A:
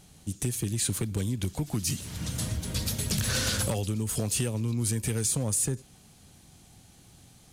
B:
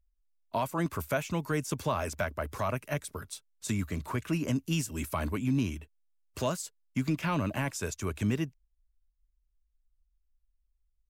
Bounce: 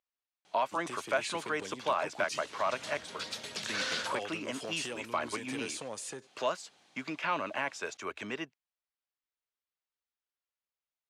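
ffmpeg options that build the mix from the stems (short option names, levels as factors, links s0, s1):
-filter_complex "[0:a]adelay=450,volume=0.891[s0];[1:a]volume=1.33[s1];[s0][s1]amix=inputs=2:normalize=0,highpass=560,lowpass=4000"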